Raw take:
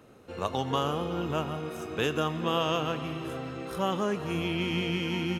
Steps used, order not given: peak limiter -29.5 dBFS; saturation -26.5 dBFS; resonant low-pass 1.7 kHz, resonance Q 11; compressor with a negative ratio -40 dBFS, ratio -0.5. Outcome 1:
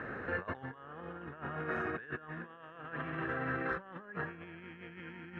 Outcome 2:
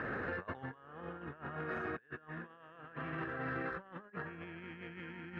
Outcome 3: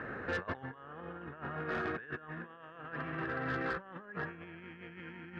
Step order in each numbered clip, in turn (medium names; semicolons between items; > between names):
compressor with a negative ratio > peak limiter > saturation > resonant low-pass; resonant low-pass > compressor with a negative ratio > peak limiter > saturation; compressor with a negative ratio > resonant low-pass > saturation > peak limiter